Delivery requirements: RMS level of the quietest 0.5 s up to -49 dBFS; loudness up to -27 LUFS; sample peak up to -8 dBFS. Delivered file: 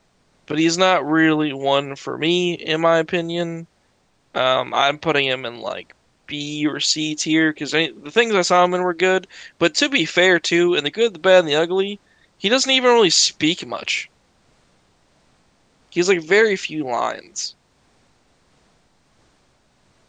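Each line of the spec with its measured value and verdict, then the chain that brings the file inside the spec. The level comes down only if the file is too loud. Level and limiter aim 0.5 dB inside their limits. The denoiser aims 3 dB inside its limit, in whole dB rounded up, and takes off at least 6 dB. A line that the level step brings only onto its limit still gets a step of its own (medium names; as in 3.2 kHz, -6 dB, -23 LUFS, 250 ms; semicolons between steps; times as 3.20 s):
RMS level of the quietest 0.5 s -62 dBFS: pass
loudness -18.5 LUFS: fail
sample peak -2.5 dBFS: fail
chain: trim -9 dB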